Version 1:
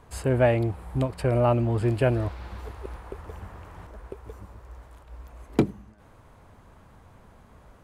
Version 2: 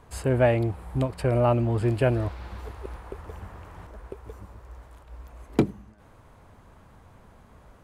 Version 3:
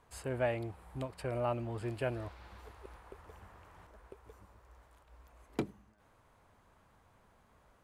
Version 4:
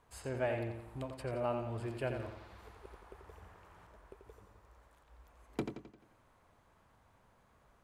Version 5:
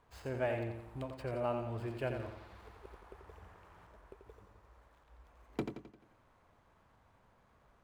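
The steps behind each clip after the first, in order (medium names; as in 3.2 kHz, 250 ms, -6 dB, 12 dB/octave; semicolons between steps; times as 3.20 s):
no audible change
bass shelf 450 Hz -7.5 dB; trim -9 dB
bucket-brigade echo 87 ms, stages 4096, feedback 47%, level -6.5 dB; trim -2.5 dB
median filter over 5 samples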